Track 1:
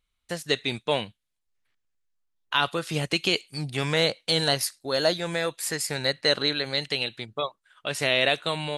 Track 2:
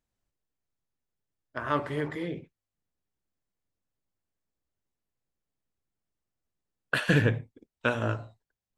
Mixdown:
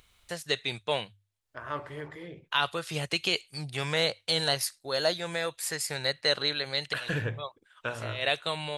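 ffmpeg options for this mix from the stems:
-filter_complex "[0:a]highpass=45,bandreject=f=50:t=h:w=6,bandreject=f=100:t=h:w=6,volume=0.708[s0];[1:a]volume=0.501,asplit=2[s1][s2];[s2]apad=whole_len=387167[s3];[s0][s3]sidechaincompress=threshold=0.00447:ratio=8:attack=16:release=118[s4];[s4][s1]amix=inputs=2:normalize=0,equalizer=f=250:w=1.4:g=-8,acompressor=mode=upward:threshold=0.00447:ratio=2.5"

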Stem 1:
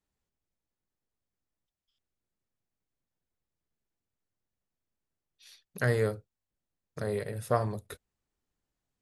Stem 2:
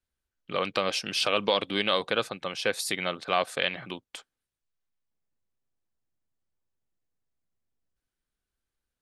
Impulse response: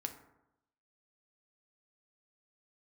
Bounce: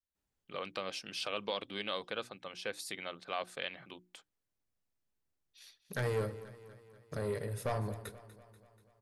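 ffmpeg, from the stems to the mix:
-filter_complex "[0:a]asoftclip=type=tanh:threshold=0.0447,adelay=150,volume=0.531,asplit=3[s0][s1][s2];[s1]volume=0.668[s3];[s2]volume=0.237[s4];[1:a]bandreject=f=60:t=h:w=6,bandreject=f=120:t=h:w=6,bandreject=f=180:t=h:w=6,bandreject=f=240:t=h:w=6,bandreject=f=300:t=h:w=6,bandreject=f=360:t=h:w=6,volume=0.251[s5];[2:a]atrim=start_sample=2205[s6];[s3][s6]afir=irnorm=-1:irlink=0[s7];[s4]aecho=0:1:242|484|726|968|1210|1452|1694|1936|2178:1|0.57|0.325|0.185|0.106|0.0602|0.0343|0.0195|0.0111[s8];[s0][s5][s7][s8]amix=inputs=4:normalize=0"

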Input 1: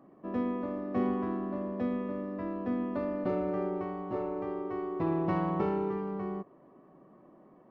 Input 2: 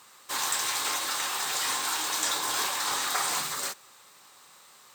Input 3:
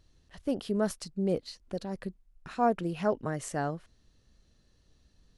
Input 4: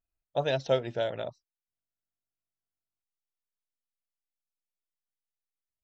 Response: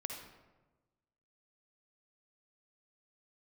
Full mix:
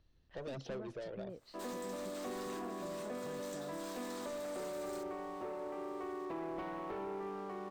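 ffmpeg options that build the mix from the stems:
-filter_complex "[0:a]highpass=460,aeval=exprs='sgn(val(0))*max(abs(val(0))-0.00133,0)':c=same,adelay=1300,volume=0.891,asplit=2[s0][s1];[s1]volume=0.562[s2];[1:a]adelay=1300,volume=0.168,asplit=2[s3][s4];[s4]volume=0.168[s5];[2:a]lowpass=3900,volume=0.473[s6];[3:a]equalizer=f=340:w=1.5:g=11.5,asoftclip=type=tanh:threshold=0.0531,aphaser=in_gain=1:out_gain=1:delay=2.2:decay=0.44:speed=1.4:type=sinusoidal,volume=0.282,asplit=2[s7][s8];[s8]volume=0.075[s9];[s0][s7]amix=inputs=2:normalize=0,acompressor=threshold=0.0112:ratio=6,volume=1[s10];[s3][s6]amix=inputs=2:normalize=0,acompressor=threshold=0.00562:ratio=6,volume=1[s11];[4:a]atrim=start_sample=2205[s12];[s2][s5][s9]amix=inputs=3:normalize=0[s13];[s13][s12]afir=irnorm=-1:irlink=0[s14];[s10][s11][s14]amix=inputs=3:normalize=0,asoftclip=type=tanh:threshold=0.02,acrossover=split=430[s15][s16];[s16]acompressor=threshold=0.00631:ratio=2.5[s17];[s15][s17]amix=inputs=2:normalize=0"

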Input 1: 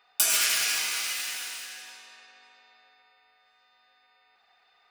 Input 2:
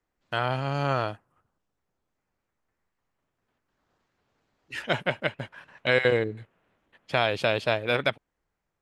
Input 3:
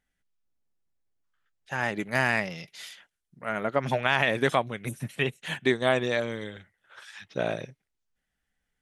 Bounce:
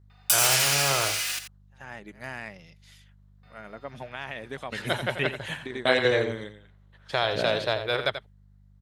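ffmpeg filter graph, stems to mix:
-filter_complex "[0:a]acontrast=66,adelay=100,volume=0.596,asplit=3[s0][s1][s2];[s0]atrim=end=1.39,asetpts=PTS-STARTPTS,afade=t=out:st=1.386:d=0.004:c=hsin[s3];[s1]atrim=start=1.39:end=3.43,asetpts=PTS-STARTPTS,volume=0[s4];[s2]atrim=start=3.43,asetpts=PTS-STARTPTS,afade=t=in:d=0.004:c=hsin[s5];[s3][s4][s5]concat=n=3:v=0:a=1,asplit=2[s6][s7];[s7]volume=0.299[s8];[1:a]lowshelf=f=370:g=-6,aeval=exprs='val(0)+0.00178*(sin(2*PI*50*n/s)+sin(2*PI*2*50*n/s)/2+sin(2*PI*3*50*n/s)/3+sin(2*PI*4*50*n/s)/4+sin(2*PI*5*50*n/s)/5)':c=same,equalizer=f=100:t=o:w=0.33:g=6,equalizer=f=250:t=o:w=0.33:g=-9,equalizer=f=400:t=o:w=0.33:g=4,equalizer=f=2500:t=o:w=0.33:g=-7,equalizer=f=4000:t=o:w=0.33:g=7,volume=0.944,asplit=3[s9][s10][s11];[s10]volume=0.316[s12];[2:a]volume=0.841,asplit=2[s13][s14];[s14]volume=0.266[s15];[s11]apad=whole_len=388799[s16];[s13][s16]sidechaingate=range=0.0224:threshold=0.00355:ratio=16:detection=peak[s17];[s8][s12][s15]amix=inputs=3:normalize=0,aecho=0:1:86:1[s18];[s6][s9][s17][s18]amix=inputs=4:normalize=0"

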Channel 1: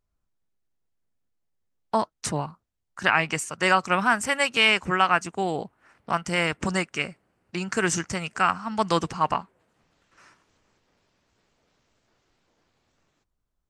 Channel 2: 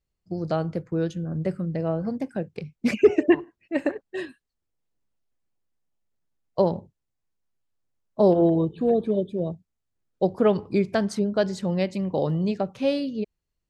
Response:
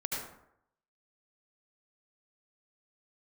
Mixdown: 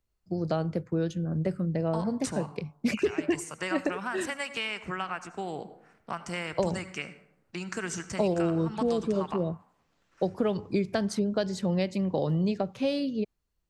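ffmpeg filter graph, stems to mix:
-filter_complex "[0:a]acompressor=threshold=0.0562:ratio=4,volume=0.447,asplit=2[s0][s1];[s1]volume=0.188[s2];[1:a]volume=0.944[s3];[2:a]atrim=start_sample=2205[s4];[s2][s4]afir=irnorm=-1:irlink=0[s5];[s0][s3][s5]amix=inputs=3:normalize=0,acrossover=split=130|3000[s6][s7][s8];[s7]acompressor=threshold=0.0631:ratio=6[s9];[s6][s9][s8]amix=inputs=3:normalize=0"

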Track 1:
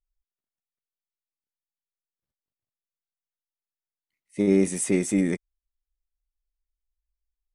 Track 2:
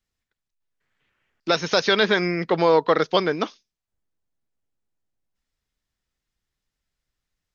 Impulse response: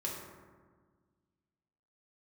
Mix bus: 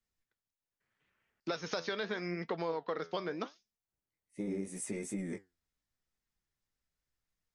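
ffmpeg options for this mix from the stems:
-filter_complex "[0:a]flanger=delay=15.5:depth=4.8:speed=2.7,volume=0.596[s0];[1:a]highpass=41,volume=0.794[s1];[s0][s1]amix=inputs=2:normalize=0,equalizer=f=3300:w=1.5:g=-3,flanger=delay=4.3:depth=7.8:regen=74:speed=0.8:shape=sinusoidal,acompressor=threshold=0.02:ratio=5"

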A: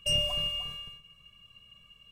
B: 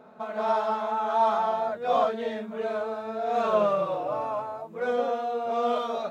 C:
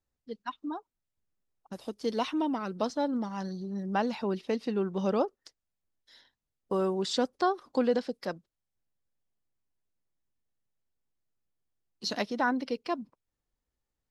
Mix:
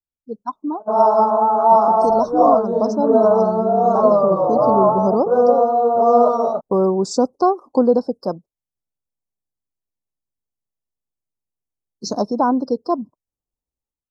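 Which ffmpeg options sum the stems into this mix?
-filter_complex "[0:a]adelay=1950,volume=0.119[s0];[1:a]dynaudnorm=f=170:g=5:m=6.31,agate=range=0.1:threshold=0.0447:ratio=16:detection=peak,adelay=500,volume=0.501[s1];[2:a]volume=1.33[s2];[s0][s1][s2]amix=inputs=3:normalize=0,afftdn=nr=17:nf=-46,asuperstop=centerf=2500:order=8:qfactor=0.59,dynaudnorm=f=120:g=5:m=3.16"

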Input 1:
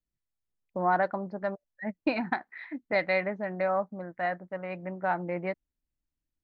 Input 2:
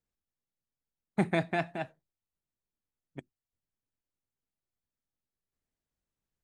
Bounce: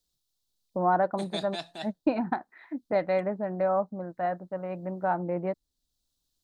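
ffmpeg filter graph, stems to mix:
-filter_complex "[0:a]lowpass=2700,equalizer=f=2100:t=o:w=0.93:g=-13,volume=1.41,asplit=2[s0][s1];[1:a]highpass=f=390:p=1,highshelf=f=2900:t=q:w=3:g=10.5,volume=1.26[s2];[s1]apad=whole_len=283949[s3];[s2][s3]sidechaincompress=threshold=0.0282:ratio=8:attack=16:release=1060[s4];[s0][s4]amix=inputs=2:normalize=0"

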